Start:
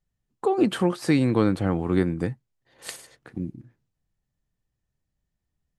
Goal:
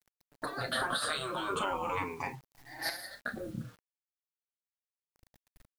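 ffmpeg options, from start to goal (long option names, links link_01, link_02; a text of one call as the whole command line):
ffmpeg -i in.wav -filter_complex "[0:a]afftfilt=real='re*pow(10,20/40*sin(2*PI*(0.74*log(max(b,1)*sr/1024/100)/log(2)-(-0.4)*(pts-256)/sr)))':imag='im*pow(10,20/40*sin(2*PI*(0.74*log(max(b,1)*sr/1024/100)/log(2)-(-0.4)*(pts-256)/sr)))':win_size=1024:overlap=0.75,acompressor=threshold=-20dB:ratio=6,equalizer=frequency=1100:width_type=o:width=0.84:gain=9.5,afftfilt=real='re*lt(hypot(re,im),0.141)':imag='im*lt(hypot(re,im),0.141)':win_size=1024:overlap=0.75,tremolo=f=1.1:d=0.34,bandreject=frequency=7900:width=14,asplit=2[link_01][link_02];[link_02]aecho=0:1:31|44:0.282|0.178[link_03];[link_01][link_03]amix=inputs=2:normalize=0,acrossover=split=6200[link_04][link_05];[link_05]acompressor=threshold=-44dB:ratio=4:attack=1:release=60[link_06];[link_04][link_06]amix=inputs=2:normalize=0,flanger=delay=4.7:depth=3.1:regen=-2:speed=0.61:shape=triangular,alimiter=level_in=4dB:limit=-24dB:level=0:latency=1:release=324,volume=-4dB,acrusher=bits=10:mix=0:aa=0.000001,volume=7.5dB" out.wav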